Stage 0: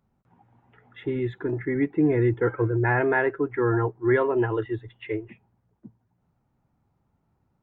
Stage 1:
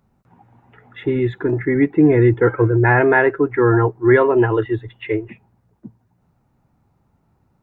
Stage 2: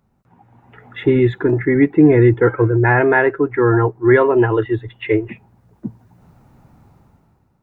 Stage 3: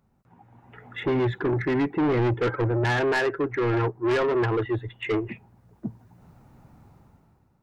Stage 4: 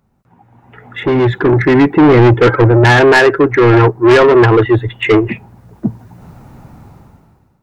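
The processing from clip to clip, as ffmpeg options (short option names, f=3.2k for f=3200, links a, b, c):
-af "bandreject=f=3.2k:w=20,volume=8.5dB"
-af "dynaudnorm=f=120:g=11:m=14.5dB,volume=-1dB"
-af "asoftclip=type=tanh:threshold=-16.5dB,volume=-3.5dB"
-af "dynaudnorm=f=500:g=5:m=9.5dB,volume=6.5dB"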